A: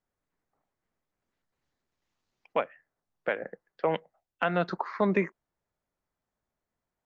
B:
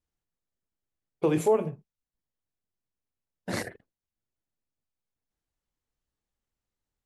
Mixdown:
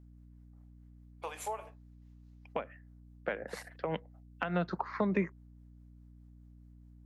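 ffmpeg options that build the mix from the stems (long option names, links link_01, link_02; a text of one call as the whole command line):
ffmpeg -i stem1.wav -i stem2.wav -filter_complex "[0:a]acrossover=split=230[link_01][link_02];[link_02]acompressor=threshold=-31dB:ratio=6[link_03];[link_01][link_03]amix=inputs=2:normalize=0,volume=1dB,asplit=2[link_04][link_05];[1:a]highpass=frequency=710:width=0.5412,highpass=frequency=710:width=1.3066,asoftclip=type=hard:threshold=-20.5dB,volume=-4dB[link_06];[link_05]apad=whole_len=311167[link_07];[link_06][link_07]sidechaincompress=threshold=-41dB:ratio=8:attack=21:release=417[link_08];[link_04][link_08]amix=inputs=2:normalize=0,tremolo=f=4.8:d=0.37,aeval=exprs='val(0)+0.002*(sin(2*PI*60*n/s)+sin(2*PI*2*60*n/s)/2+sin(2*PI*3*60*n/s)/3+sin(2*PI*4*60*n/s)/4+sin(2*PI*5*60*n/s)/5)':channel_layout=same" out.wav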